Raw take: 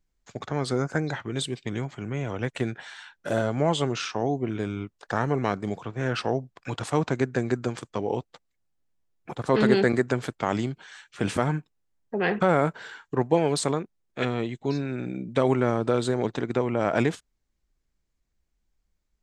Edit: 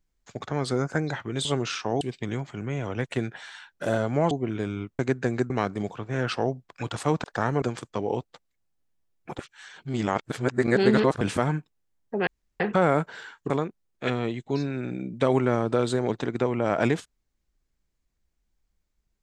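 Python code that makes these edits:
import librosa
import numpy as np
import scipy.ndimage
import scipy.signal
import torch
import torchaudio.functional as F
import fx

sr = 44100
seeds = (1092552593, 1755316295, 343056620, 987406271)

y = fx.edit(x, sr, fx.move(start_s=3.75, length_s=0.56, to_s=1.45),
    fx.swap(start_s=4.99, length_s=0.38, other_s=7.11, other_length_s=0.51),
    fx.reverse_span(start_s=9.39, length_s=1.82),
    fx.insert_room_tone(at_s=12.27, length_s=0.33),
    fx.cut(start_s=13.17, length_s=0.48), tone=tone)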